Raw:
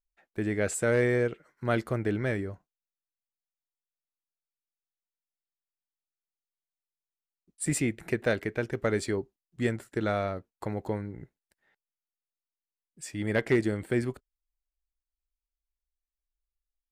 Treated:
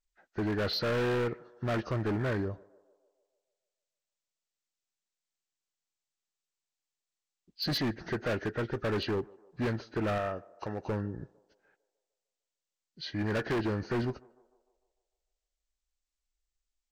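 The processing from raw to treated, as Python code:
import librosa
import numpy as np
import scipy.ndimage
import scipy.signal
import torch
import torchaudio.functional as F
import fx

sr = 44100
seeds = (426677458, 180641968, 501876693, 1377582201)

p1 = fx.freq_compress(x, sr, knee_hz=1200.0, ratio=1.5)
p2 = fx.low_shelf(p1, sr, hz=450.0, db=-8.0, at=(10.18, 10.88))
p3 = np.clip(p2, -10.0 ** (-29.5 / 20.0), 10.0 ** (-29.5 / 20.0))
p4 = p3 + fx.echo_banded(p3, sr, ms=150, feedback_pct=61, hz=630.0, wet_db=-22, dry=0)
y = F.gain(torch.from_numpy(p4), 2.0).numpy()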